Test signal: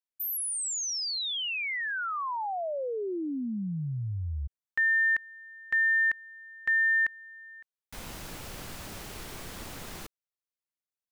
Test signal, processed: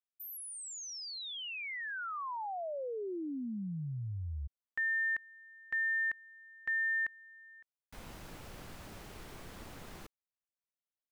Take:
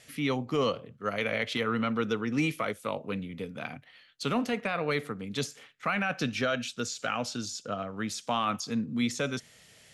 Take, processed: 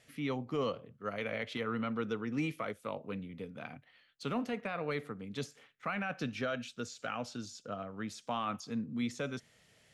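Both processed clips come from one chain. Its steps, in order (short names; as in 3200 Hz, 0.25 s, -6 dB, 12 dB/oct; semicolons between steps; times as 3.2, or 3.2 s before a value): high shelf 2900 Hz -7 dB; gain -6 dB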